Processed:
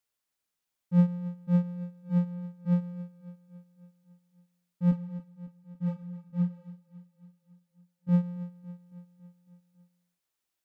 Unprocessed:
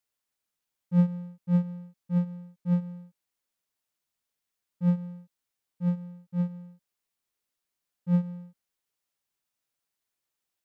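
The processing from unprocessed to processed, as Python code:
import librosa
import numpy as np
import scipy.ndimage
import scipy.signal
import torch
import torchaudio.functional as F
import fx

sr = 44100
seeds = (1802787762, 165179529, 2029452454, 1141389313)

y = fx.chorus_voices(x, sr, voices=4, hz=1.0, base_ms=10, depth_ms=3.7, mix_pct=40, at=(4.91, 8.09))
y = fx.echo_feedback(y, sr, ms=277, feedback_pct=60, wet_db=-15.5)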